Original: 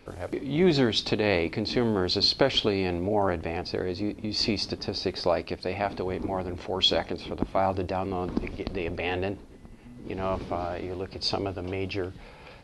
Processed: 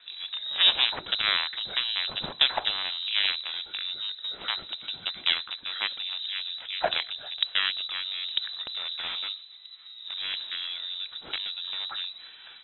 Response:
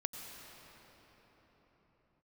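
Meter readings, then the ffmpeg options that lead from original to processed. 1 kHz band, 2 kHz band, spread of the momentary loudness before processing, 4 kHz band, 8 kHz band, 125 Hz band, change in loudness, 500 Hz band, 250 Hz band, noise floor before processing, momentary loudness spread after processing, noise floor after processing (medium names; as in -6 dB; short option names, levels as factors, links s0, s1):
-6.0 dB, +3.5 dB, 11 LU, +5.5 dB, under -35 dB, under -20 dB, 0.0 dB, -16.0 dB, -25.0 dB, -48 dBFS, 11 LU, -48 dBFS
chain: -af "aeval=exprs='0.376*(cos(1*acos(clip(val(0)/0.376,-1,1)))-cos(1*PI/2))+0.106*(cos(7*acos(clip(val(0)/0.376,-1,1)))-cos(7*PI/2))':c=same,lowpass=f=3400:t=q:w=0.5098,lowpass=f=3400:t=q:w=0.6013,lowpass=f=3400:t=q:w=0.9,lowpass=f=3400:t=q:w=2.563,afreqshift=-4000"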